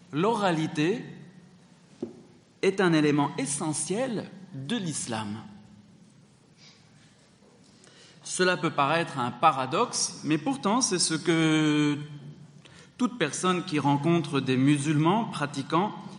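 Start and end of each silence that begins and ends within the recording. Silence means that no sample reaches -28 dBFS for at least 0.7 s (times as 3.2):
1.01–2.03
5.34–8.29
11.99–13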